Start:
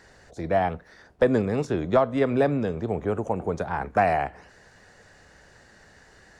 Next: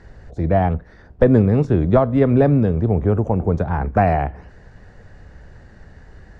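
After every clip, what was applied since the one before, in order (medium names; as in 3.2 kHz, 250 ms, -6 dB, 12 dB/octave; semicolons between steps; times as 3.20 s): RIAA curve playback; trim +2.5 dB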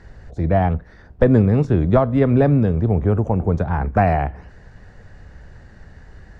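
peaking EQ 430 Hz -2.5 dB 2 oct; trim +1 dB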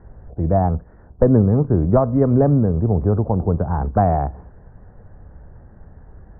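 low-pass 1.2 kHz 24 dB/octave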